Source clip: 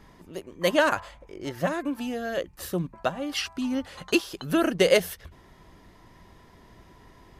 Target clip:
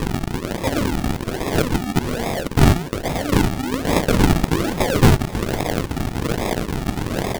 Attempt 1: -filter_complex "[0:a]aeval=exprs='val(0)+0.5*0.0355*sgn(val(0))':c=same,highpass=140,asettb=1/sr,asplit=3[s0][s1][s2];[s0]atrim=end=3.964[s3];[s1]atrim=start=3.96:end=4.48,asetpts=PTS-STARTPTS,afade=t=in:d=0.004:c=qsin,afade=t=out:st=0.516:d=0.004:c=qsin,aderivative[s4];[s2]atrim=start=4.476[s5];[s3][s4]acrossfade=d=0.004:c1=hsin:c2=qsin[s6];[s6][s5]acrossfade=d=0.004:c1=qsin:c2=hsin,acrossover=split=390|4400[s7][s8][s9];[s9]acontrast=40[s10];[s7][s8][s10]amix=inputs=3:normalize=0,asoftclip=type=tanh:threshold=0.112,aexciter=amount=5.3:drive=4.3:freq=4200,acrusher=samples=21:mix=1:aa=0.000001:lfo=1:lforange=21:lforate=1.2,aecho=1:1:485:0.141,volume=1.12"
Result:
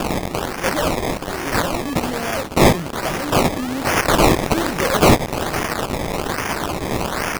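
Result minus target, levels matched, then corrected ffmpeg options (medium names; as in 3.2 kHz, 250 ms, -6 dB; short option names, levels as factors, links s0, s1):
decimation with a swept rate: distortion -11 dB
-filter_complex "[0:a]aeval=exprs='val(0)+0.5*0.0355*sgn(val(0))':c=same,highpass=140,asettb=1/sr,asplit=3[s0][s1][s2];[s0]atrim=end=3.964[s3];[s1]atrim=start=3.96:end=4.48,asetpts=PTS-STARTPTS,afade=t=in:d=0.004:c=qsin,afade=t=out:st=0.516:d=0.004:c=qsin,aderivative[s4];[s2]atrim=start=4.476[s5];[s3][s4]acrossfade=d=0.004:c1=hsin:c2=qsin[s6];[s6][s5]acrossfade=d=0.004:c1=qsin:c2=hsin,acrossover=split=390|4400[s7][s8][s9];[s9]acontrast=40[s10];[s7][s8][s10]amix=inputs=3:normalize=0,asoftclip=type=tanh:threshold=0.112,aexciter=amount=5.3:drive=4.3:freq=4200,acrusher=samples=59:mix=1:aa=0.000001:lfo=1:lforange=59:lforate=1.2,aecho=1:1:485:0.141,volume=1.12"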